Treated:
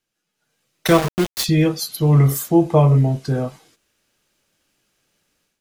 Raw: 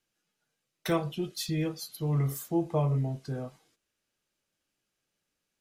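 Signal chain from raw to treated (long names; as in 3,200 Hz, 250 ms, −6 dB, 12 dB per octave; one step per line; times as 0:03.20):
automatic gain control gain up to 13 dB
0:00.87–0:01.44: centre clipping without the shift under −20 dBFS
level +1.5 dB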